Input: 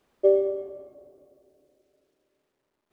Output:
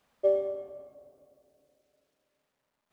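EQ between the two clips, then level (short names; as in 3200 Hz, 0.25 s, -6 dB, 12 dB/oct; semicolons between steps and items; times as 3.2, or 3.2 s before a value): low shelf 84 Hz -6.5 dB; bell 360 Hz -13.5 dB 0.55 oct; 0.0 dB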